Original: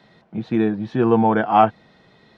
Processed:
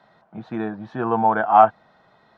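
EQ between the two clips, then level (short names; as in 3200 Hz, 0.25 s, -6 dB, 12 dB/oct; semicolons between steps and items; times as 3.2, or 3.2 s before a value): band shelf 980 Hz +10.5 dB; -8.5 dB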